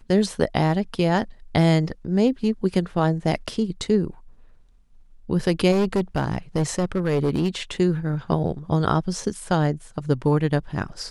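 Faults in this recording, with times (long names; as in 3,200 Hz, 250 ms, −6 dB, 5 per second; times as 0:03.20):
0:05.71–0:07.48: clipping −16.5 dBFS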